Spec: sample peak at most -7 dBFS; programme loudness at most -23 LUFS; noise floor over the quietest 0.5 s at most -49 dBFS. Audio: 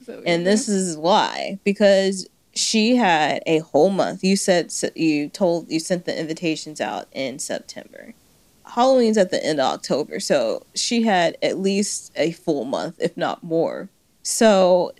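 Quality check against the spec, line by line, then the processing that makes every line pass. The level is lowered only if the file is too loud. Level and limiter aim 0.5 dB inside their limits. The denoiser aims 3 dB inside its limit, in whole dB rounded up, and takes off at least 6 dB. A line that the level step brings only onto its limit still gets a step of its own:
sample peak -4.0 dBFS: fail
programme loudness -20.5 LUFS: fail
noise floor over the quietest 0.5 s -56 dBFS: pass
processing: trim -3 dB; peak limiter -7.5 dBFS

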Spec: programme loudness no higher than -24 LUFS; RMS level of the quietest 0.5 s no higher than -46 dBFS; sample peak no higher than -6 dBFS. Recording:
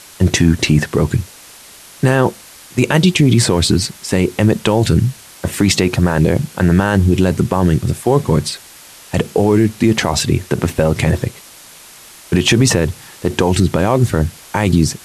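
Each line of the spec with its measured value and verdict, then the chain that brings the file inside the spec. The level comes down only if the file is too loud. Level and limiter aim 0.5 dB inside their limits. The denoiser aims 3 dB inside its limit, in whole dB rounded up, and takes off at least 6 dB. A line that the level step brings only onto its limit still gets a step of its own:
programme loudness -15.0 LUFS: fail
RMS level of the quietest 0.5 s -40 dBFS: fail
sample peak -2.0 dBFS: fail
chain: trim -9.5 dB

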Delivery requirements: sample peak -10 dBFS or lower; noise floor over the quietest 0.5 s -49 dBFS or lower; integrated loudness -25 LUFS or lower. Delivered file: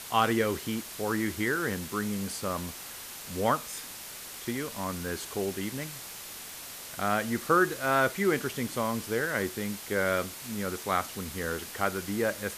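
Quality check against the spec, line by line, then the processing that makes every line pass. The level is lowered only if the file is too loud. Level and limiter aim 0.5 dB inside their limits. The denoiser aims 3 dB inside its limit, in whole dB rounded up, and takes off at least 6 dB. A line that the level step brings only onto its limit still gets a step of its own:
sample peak -11.5 dBFS: pass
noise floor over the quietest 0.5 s -43 dBFS: fail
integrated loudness -31.0 LUFS: pass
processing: noise reduction 9 dB, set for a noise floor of -43 dBFS

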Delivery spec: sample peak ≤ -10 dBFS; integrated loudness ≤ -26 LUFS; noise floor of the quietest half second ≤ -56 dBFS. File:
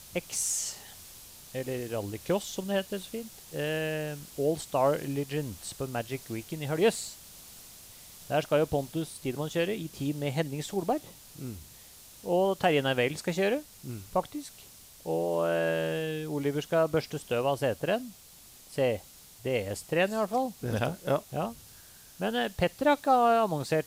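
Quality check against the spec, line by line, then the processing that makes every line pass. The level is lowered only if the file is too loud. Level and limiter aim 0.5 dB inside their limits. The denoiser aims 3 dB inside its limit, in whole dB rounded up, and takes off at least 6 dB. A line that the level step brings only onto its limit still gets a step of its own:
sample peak -12.0 dBFS: pass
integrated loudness -30.0 LUFS: pass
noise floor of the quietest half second -53 dBFS: fail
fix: noise reduction 6 dB, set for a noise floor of -53 dBFS

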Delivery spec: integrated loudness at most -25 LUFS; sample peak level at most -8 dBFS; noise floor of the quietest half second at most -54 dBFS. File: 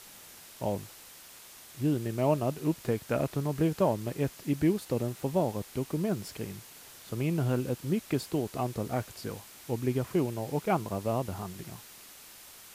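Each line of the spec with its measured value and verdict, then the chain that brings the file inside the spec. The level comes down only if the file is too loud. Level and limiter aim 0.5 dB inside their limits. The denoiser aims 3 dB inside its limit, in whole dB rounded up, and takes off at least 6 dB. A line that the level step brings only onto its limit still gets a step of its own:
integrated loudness -31.5 LUFS: pass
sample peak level -14.5 dBFS: pass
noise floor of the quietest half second -51 dBFS: fail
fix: noise reduction 6 dB, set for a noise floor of -51 dBFS

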